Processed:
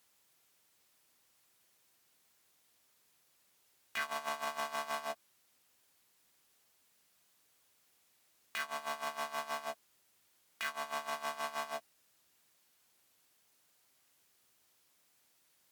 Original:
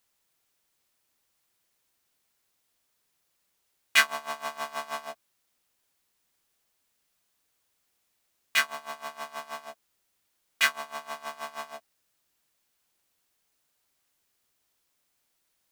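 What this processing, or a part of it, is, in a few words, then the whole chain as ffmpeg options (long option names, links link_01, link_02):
podcast mastering chain: -af "highpass=82,deesser=0.45,acompressor=threshold=-37dB:ratio=2.5,alimiter=level_in=5dB:limit=-24dB:level=0:latency=1:release=17,volume=-5dB,volume=4dB" -ar 48000 -c:a libmp3lame -b:a 96k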